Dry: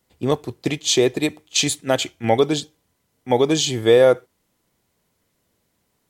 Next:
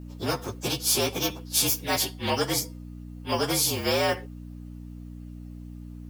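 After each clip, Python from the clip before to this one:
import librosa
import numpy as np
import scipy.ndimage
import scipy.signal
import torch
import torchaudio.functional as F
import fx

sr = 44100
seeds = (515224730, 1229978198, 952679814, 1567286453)

y = fx.partial_stretch(x, sr, pct=115)
y = fx.add_hum(y, sr, base_hz=60, snr_db=20)
y = fx.spectral_comp(y, sr, ratio=2.0)
y = y * 10.0 ** (-5.5 / 20.0)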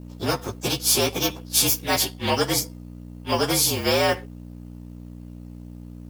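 y = fx.law_mismatch(x, sr, coded='A')
y = y * 10.0 ** (4.5 / 20.0)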